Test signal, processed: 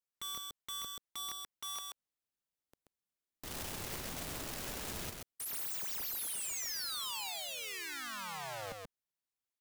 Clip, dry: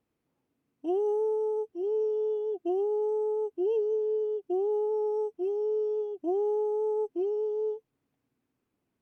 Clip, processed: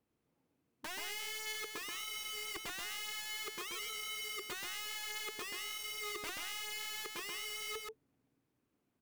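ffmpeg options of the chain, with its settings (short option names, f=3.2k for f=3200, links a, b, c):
-filter_complex "[0:a]acrossover=split=520[a][b];[a]dynaudnorm=f=380:g=7:m=5.5dB[c];[b]alimiter=level_in=10dB:limit=-24dB:level=0:latency=1,volume=-10dB[d];[c][d]amix=inputs=2:normalize=0,acompressor=threshold=-31dB:ratio=5,aeval=exprs='(mod(59.6*val(0)+1,2)-1)/59.6':c=same,aecho=1:1:132:0.668,volume=-2.5dB"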